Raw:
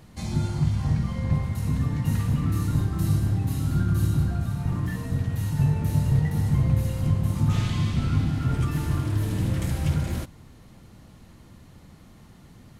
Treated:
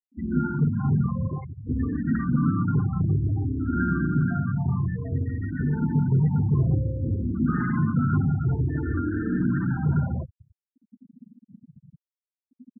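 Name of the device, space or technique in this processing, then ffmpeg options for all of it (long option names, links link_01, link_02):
barber-pole phaser into a guitar amplifier: -filter_complex "[0:a]asplit=2[link_01][link_02];[link_02]afreqshift=-0.56[link_03];[link_01][link_03]amix=inputs=2:normalize=1,asoftclip=type=tanh:threshold=-19.5dB,highpass=90,equalizer=frequency=110:width_type=q:width=4:gain=-4,equalizer=frequency=250:width_type=q:width=4:gain=6,equalizer=frequency=550:width_type=q:width=4:gain=-4,equalizer=frequency=1500:width_type=q:width=4:gain=10,equalizer=frequency=2500:width_type=q:width=4:gain=-8,equalizer=frequency=4000:width_type=q:width=4:gain=-8,lowpass=frequency=4500:width=0.5412,lowpass=frequency=4500:width=1.3066,asettb=1/sr,asplit=3[link_04][link_05][link_06];[link_04]atrim=end=1.284[link_07];[link_05]atrim=start=1.28:end=1.69,asetpts=PTS-STARTPTS,afade=type=in:duration=0.004:curve=qsin,afade=type=out:start_time=0.406:duration=0.004:curve=qsin,aemphasis=mode=production:type=bsi[link_08];[link_06]atrim=start=1.686[link_09];[link_07][link_08]acrossfade=duration=0.004:curve1=hsin:curve2=qsin[link_10];[link_10][link_09]acrossfade=duration=0.004:curve1=qsin:curve2=hsin,afftfilt=real='re*gte(hypot(re,im),0.0251)':imag='im*gte(hypot(re,im),0.0251)':win_size=1024:overlap=0.75,volume=6.5dB"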